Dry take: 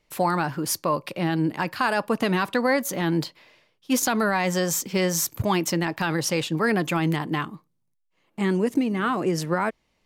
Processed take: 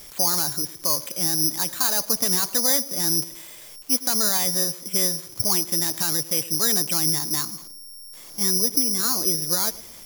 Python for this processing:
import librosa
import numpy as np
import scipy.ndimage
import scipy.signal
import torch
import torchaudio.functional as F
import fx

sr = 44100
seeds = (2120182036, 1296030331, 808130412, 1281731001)

y = x + 0.5 * 10.0 ** (-36.0 / 20.0) * np.sign(x)
y = fx.echo_banded(y, sr, ms=107, feedback_pct=49, hz=340.0, wet_db=-15.5)
y = (np.kron(scipy.signal.resample_poly(y, 1, 8), np.eye(8)[0]) * 8)[:len(y)]
y = F.gain(torch.from_numpy(y), -8.5).numpy()